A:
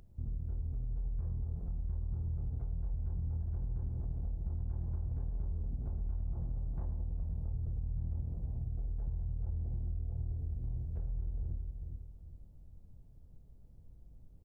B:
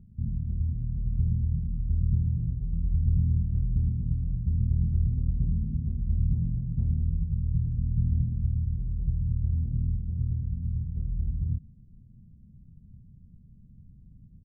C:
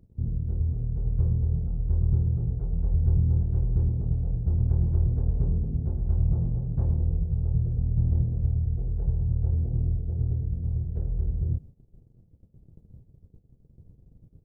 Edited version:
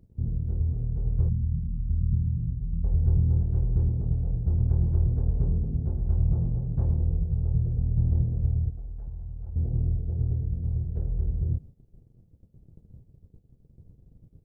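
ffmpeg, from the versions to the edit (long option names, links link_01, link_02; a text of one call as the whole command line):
ffmpeg -i take0.wav -i take1.wav -i take2.wav -filter_complex "[2:a]asplit=3[link_01][link_02][link_03];[link_01]atrim=end=1.292[link_04];[1:a]atrim=start=1.288:end=2.842[link_05];[link_02]atrim=start=2.838:end=8.702[link_06];[0:a]atrim=start=8.698:end=9.562[link_07];[link_03]atrim=start=9.558[link_08];[link_04][link_05]acrossfade=duration=0.004:curve1=hsin:curve2=hsin[link_09];[link_09][link_06]acrossfade=duration=0.004:curve1=hsin:curve2=hsin[link_10];[link_10][link_07]acrossfade=duration=0.004:curve1=hsin:curve2=hsin[link_11];[link_11][link_08]acrossfade=duration=0.004:curve1=hsin:curve2=hsin" out.wav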